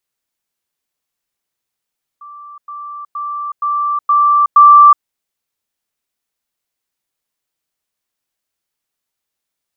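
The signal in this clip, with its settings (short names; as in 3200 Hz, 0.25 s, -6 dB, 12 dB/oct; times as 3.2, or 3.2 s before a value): level ladder 1170 Hz -31.5 dBFS, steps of 6 dB, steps 6, 0.37 s 0.10 s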